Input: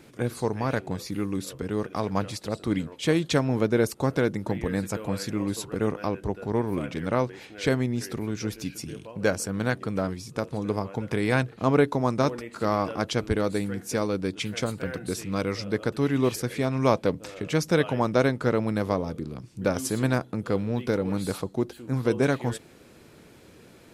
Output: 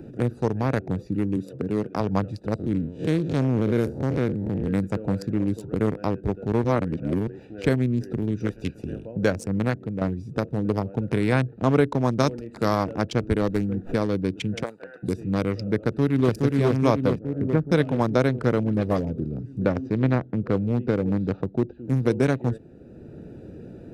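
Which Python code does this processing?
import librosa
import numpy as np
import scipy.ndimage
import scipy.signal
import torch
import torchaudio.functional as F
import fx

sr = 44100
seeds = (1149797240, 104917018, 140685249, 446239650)

y = fx.highpass(x, sr, hz=130.0, slope=12, at=(1.36, 2.0))
y = fx.spec_blur(y, sr, span_ms=122.0, at=(2.58, 4.67), fade=0.02)
y = fx.spec_clip(y, sr, under_db=16, at=(8.45, 9.04), fade=0.02)
y = fx.high_shelf(y, sr, hz=2600.0, db=10.5, at=(12.2, 12.84))
y = fx.running_max(y, sr, window=9, at=(13.41, 13.94))
y = fx.highpass(y, sr, hz=fx.line((14.62, 540.0), (15.02, 1400.0)), slope=12, at=(14.62, 15.02), fade=0.02)
y = fx.echo_throw(y, sr, start_s=15.77, length_s=0.57, ms=420, feedback_pct=65, wet_db=-1.0)
y = fx.lowpass(y, sr, hz=1600.0, slope=24, at=(17.2, 17.7), fade=0.02)
y = fx.dispersion(y, sr, late='highs', ms=71.0, hz=2500.0, at=(18.63, 19.07))
y = fx.gaussian_blur(y, sr, sigma=2.2, at=(19.64, 21.85))
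y = fx.edit(y, sr, fx.reverse_span(start_s=6.64, length_s=0.63),
    fx.fade_out_to(start_s=9.54, length_s=0.47, floor_db=-8.0), tone=tone)
y = fx.wiener(y, sr, points=41)
y = fx.low_shelf(y, sr, hz=250.0, db=4.0)
y = fx.band_squash(y, sr, depth_pct=40)
y = F.gain(torch.from_numpy(y), 1.5).numpy()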